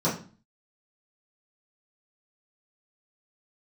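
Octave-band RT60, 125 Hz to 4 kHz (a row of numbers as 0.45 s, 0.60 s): 0.55 s, 0.55 s, 0.40 s, 0.40 s, 0.35 s, 0.35 s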